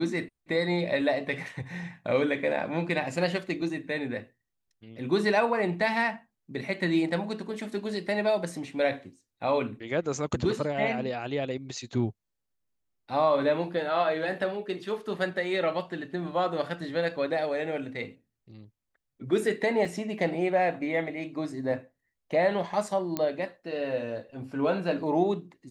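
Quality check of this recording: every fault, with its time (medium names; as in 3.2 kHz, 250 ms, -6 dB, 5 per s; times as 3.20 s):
19.85 s: dropout 3.9 ms
23.17 s: pop -14 dBFS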